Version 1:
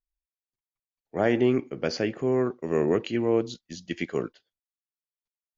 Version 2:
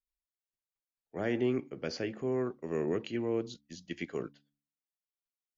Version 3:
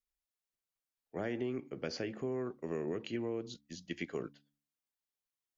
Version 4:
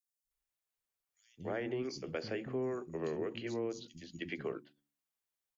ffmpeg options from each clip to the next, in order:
-filter_complex "[0:a]bandreject=f=71.39:t=h:w=4,bandreject=f=142.78:t=h:w=4,bandreject=f=214.17:t=h:w=4,bandreject=f=285.56:t=h:w=4,acrossover=split=510|1200[a][b][c];[b]alimiter=level_in=5.5dB:limit=-24dB:level=0:latency=1,volume=-5.5dB[d];[a][d][c]amix=inputs=3:normalize=0,volume=-7.5dB"
-af "acompressor=threshold=-33dB:ratio=6"
-filter_complex "[0:a]bandreject=f=60:t=h:w=6,bandreject=f=120:t=h:w=6,bandreject=f=180:t=h:w=6,bandreject=f=240:t=h:w=6,bandreject=f=300:t=h:w=6,bandreject=f=360:t=h:w=6,acrossover=split=230|4500[a][b][c];[a]adelay=240[d];[b]adelay=310[e];[d][e][c]amix=inputs=3:normalize=0,volume=1.5dB"

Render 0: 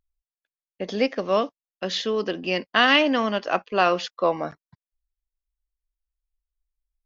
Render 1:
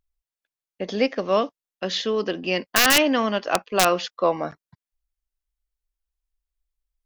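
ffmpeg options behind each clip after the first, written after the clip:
-af "aeval=exprs='(mod(2.11*val(0)+1,2)-1)/2.11':c=same,volume=1dB"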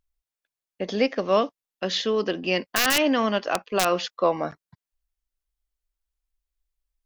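-af "alimiter=limit=-10.5dB:level=0:latency=1:release=91"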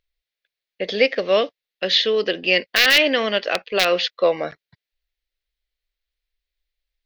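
-af "equalizer=f=250:t=o:w=1:g=-4,equalizer=f=500:t=o:w=1:g=9,equalizer=f=1k:t=o:w=1:g=-7,equalizer=f=2k:t=o:w=1:g=11,equalizer=f=4k:t=o:w=1:g=12,equalizer=f=8k:t=o:w=1:g=-8,volume=-1.5dB"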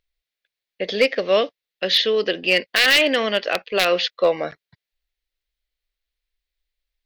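-af "asoftclip=type=hard:threshold=-8.5dB"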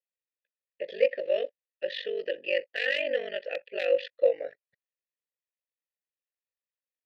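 -filter_complex "[0:a]asplit=3[a][b][c];[a]bandpass=f=530:t=q:w=8,volume=0dB[d];[b]bandpass=f=1.84k:t=q:w=8,volume=-6dB[e];[c]bandpass=f=2.48k:t=q:w=8,volume=-9dB[f];[d][e][f]amix=inputs=3:normalize=0,aeval=exprs='val(0)*sin(2*PI*24*n/s)':c=same"

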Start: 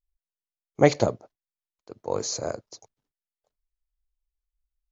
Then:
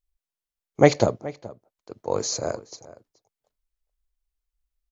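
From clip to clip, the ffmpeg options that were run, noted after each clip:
-filter_complex "[0:a]asplit=2[a][b];[b]adelay=425.7,volume=-18dB,highshelf=f=4k:g=-9.58[c];[a][c]amix=inputs=2:normalize=0,volume=2.5dB"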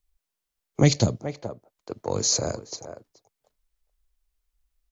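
-filter_complex "[0:a]acrossover=split=240|3000[a][b][c];[b]acompressor=threshold=-34dB:ratio=4[d];[a][d][c]amix=inputs=3:normalize=0,volume=6dB"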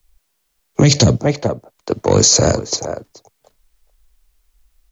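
-filter_complex "[0:a]acrossover=split=130|460|1500[a][b][c][d];[c]asoftclip=type=tanh:threshold=-29dB[e];[a][b][e][d]amix=inputs=4:normalize=0,alimiter=level_in=17dB:limit=-1dB:release=50:level=0:latency=1,volume=-1dB"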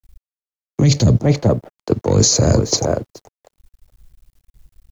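-af "lowshelf=f=340:g=10,areverse,acompressor=threshold=-14dB:ratio=6,areverse,aeval=exprs='sgn(val(0))*max(abs(val(0))-0.00376,0)':c=same,volume=3.5dB"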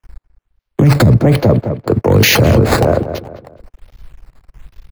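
-filter_complex "[0:a]acrossover=split=170|2800[a][b][c];[c]acrusher=samples=10:mix=1:aa=0.000001:lfo=1:lforange=10:lforate=1.2[d];[a][b][d]amix=inputs=3:normalize=0,asplit=2[e][f];[f]adelay=207,lowpass=f=3k:p=1,volume=-16.5dB,asplit=2[g][h];[h]adelay=207,lowpass=f=3k:p=1,volume=0.36,asplit=2[i][j];[j]adelay=207,lowpass=f=3k:p=1,volume=0.36[k];[e][g][i][k]amix=inputs=4:normalize=0,alimiter=level_in=12.5dB:limit=-1dB:release=50:level=0:latency=1,volume=-1dB"

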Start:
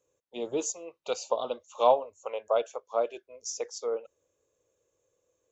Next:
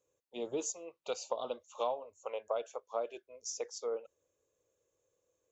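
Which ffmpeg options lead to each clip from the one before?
-af "acompressor=threshold=-26dB:ratio=6,volume=-4.5dB"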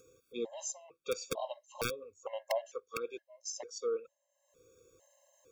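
-af "acompressor=mode=upward:threshold=-51dB:ratio=2.5,aeval=exprs='(mod(15*val(0)+1,2)-1)/15':c=same,afftfilt=real='re*gt(sin(2*PI*1.1*pts/sr)*(1-2*mod(floor(b*sr/1024/540),2)),0)':imag='im*gt(sin(2*PI*1.1*pts/sr)*(1-2*mod(floor(b*sr/1024/540),2)),0)':win_size=1024:overlap=0.75,volume=3dB"

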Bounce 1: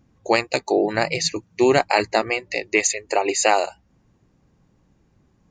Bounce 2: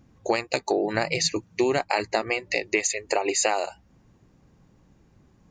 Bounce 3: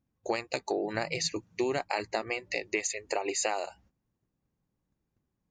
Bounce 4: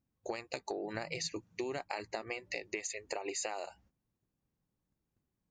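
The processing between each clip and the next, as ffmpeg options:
-af "acompressor=threshold=-23dB:ratio=5,volume=2.5dB"
-af "agate=range=-16dB:threshold=-53dB:ratio=16:detection=peak,volume=-7dB"
-af "acompressor=threshold=-30dB:ratio=6,volume=-4dB"

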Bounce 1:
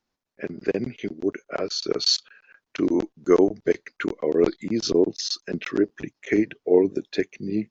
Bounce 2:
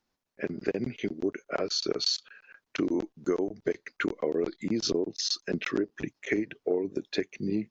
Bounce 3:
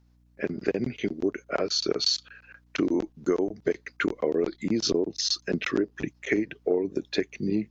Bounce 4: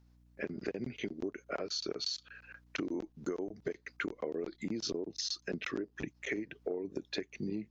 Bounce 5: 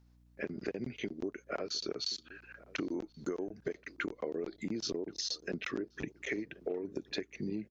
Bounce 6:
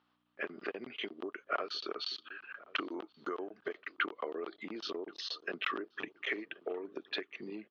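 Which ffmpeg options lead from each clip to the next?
-af "acompressor=threshold=-24dB:ratio=12"
-af "aeval=exprs='val(0)+0.000708*(sin(2*PI*60*n/s)+sin(2*PI*2*60*n/s)/2+sin(2*PI*3*60*n/s)/3+sin(2*PI*4*60*n/s)/4+sin(2*PI*5*60*n/s)/5)':c=same,volume=3dB"
-af "acompressor=threshold=-34dB:ratio=3,volume=-2.5dB"
-filter_complex "[0:a]asplit=2[a][b];[b]adelay=1079,lowpass=f=1.2k:p=1,volume=-20dB,asplit=2[c][d];[d]adelay=1079,lowpass=f=1.2k:p=1,volume=0.38,asplit=2[e][f];[f]adelay=1079,lowpass=f=1.2k:p=1,volume=0.38[g];[a][c][e][g]amix=inputs=4:normalize=0"
-af "highpass=490,equalizer=f=520:t=q:w=4:g=-4,equalizer=f=1.2k:t=q:w=4:g=10,equalizer=f=2.2k:t=q:w=4:g=-3,equalizer=f=3.1k:t=q:w=4:g=7,lowpass=f=3.7k:w=0.5412,lowpass=f=3.7k:w=1.3066,volume=3.5dB"

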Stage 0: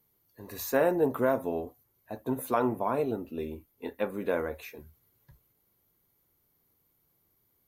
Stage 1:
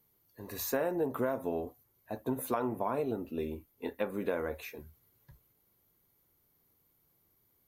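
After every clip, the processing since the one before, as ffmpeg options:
-af "acompressor=threshold=-28dB:ratio=6"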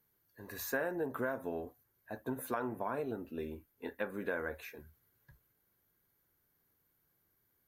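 -af "equalizer=f=1.6k:t=o:w=0.38:g=11,volume=-5dB"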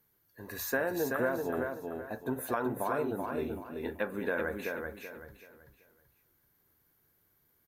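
-af "aecho=1:1:381|762|1143|1524:0.596|0.185|0.0572|0.0177,volume=4dB"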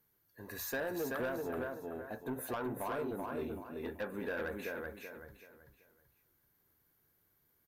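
-af "asoftclip=type=tanh:threshold=-28dB,volume=-3dB"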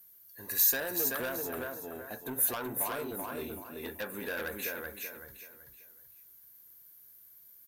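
-af "crystalizer=i=6:c=0,volume=-1dB"

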